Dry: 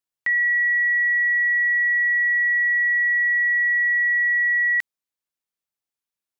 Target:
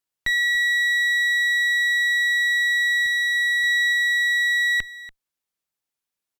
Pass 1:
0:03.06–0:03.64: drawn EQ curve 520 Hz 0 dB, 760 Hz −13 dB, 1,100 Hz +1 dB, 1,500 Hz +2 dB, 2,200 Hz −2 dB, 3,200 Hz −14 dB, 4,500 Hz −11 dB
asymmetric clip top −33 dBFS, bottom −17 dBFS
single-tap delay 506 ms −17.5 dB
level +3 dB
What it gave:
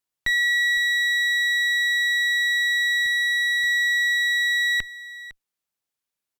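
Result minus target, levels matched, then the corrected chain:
echo 218 ms late
0:03.06–0:03.64: drawn EQ curve 520 Hz 0 dB, 760 Hz −13 dB, 1,100 Hz +1 dB, 1,500 Hz +2 dB, 2,200 Hz −2 dB, 3,200 Hz −14 dB, 4,500 Hz −11 dB
asymmetric clip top −33 dBFS, bottom −17 dBFS
single-tap delay 288 ms −17.5 dB
level +3 dB

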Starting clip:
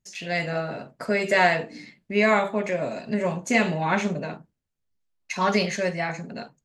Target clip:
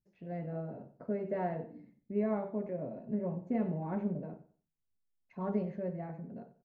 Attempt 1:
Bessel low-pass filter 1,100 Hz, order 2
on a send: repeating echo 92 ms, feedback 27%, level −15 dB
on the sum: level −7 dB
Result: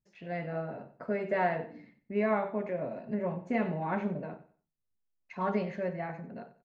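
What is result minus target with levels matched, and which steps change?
1,000 Hz band +5.0 dB
change: Bessel low-pass filter 400 Hz, order 2

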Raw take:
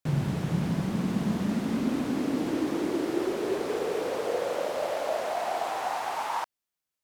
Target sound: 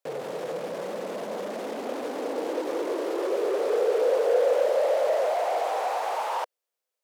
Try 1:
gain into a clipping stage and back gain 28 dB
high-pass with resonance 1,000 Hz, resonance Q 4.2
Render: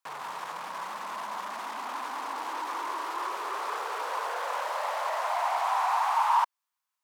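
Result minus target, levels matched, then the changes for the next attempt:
500 Hz band −12.0 dB
change: high-pass with resonance 500 Hz, resonance Q 4.2

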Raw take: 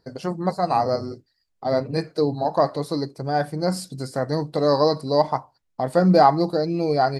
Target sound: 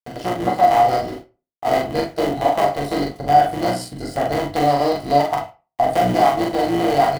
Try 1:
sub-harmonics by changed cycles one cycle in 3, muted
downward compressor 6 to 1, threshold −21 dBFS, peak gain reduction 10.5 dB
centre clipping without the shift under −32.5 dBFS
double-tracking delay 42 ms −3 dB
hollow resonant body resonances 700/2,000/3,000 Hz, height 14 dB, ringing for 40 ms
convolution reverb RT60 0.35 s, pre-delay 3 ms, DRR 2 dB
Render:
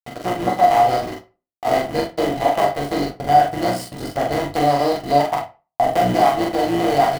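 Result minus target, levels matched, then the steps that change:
centre clipping without the shift: distortion +14 dB
change: centre clipping without the shift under −44 dBFS

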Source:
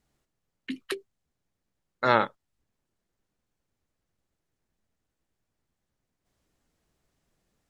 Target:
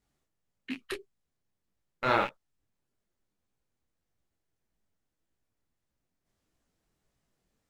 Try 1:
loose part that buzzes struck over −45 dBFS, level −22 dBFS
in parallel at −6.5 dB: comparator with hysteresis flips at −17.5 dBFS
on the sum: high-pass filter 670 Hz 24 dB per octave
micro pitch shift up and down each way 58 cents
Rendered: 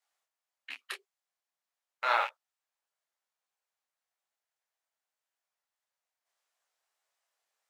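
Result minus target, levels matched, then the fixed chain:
500 Hz band −7.5 dB
loose part that buzzes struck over −45 dBFS, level −22 dBFS
in parallel at −6.5 dB: comparator with hysteresis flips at −17.5 dBFS
on the sum: micro pitch shift up and down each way 58 cents

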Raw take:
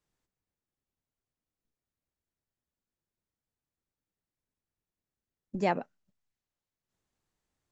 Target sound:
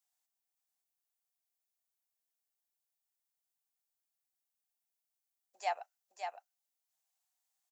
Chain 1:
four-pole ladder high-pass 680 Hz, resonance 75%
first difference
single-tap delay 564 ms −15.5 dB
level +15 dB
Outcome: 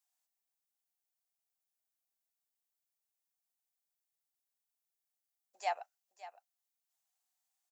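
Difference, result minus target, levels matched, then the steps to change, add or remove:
echo-to-direct −9.5 dB
change: single-tap delay 564 ms −6 dB

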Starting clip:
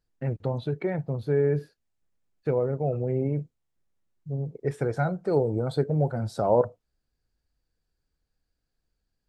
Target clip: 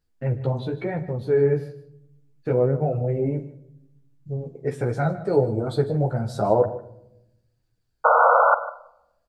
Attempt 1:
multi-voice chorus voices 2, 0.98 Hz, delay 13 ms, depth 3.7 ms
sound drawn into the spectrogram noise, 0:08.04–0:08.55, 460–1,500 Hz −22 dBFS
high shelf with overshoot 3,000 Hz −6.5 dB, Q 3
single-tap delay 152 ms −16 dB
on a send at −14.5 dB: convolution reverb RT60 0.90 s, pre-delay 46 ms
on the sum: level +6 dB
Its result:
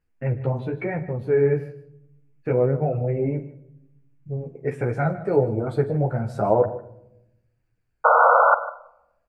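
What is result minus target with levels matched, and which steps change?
4,000 Hz band −11.0 dB
remove: high shelf with overshoot 3,000 Hz −6.5 dB, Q 3

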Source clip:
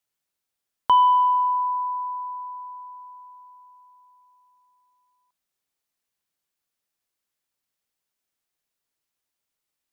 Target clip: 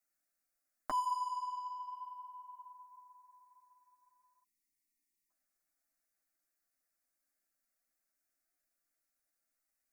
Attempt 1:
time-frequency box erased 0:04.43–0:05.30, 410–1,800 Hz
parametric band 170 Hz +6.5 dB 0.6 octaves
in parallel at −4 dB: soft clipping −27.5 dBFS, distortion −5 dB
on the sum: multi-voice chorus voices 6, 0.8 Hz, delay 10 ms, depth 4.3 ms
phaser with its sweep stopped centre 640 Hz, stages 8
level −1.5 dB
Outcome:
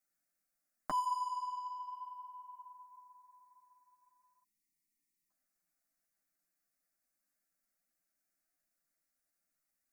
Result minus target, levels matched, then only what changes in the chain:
125 Hz band +7.0 dB
change: parametric band 170 Hz −3.5 dB 0.6 octaves

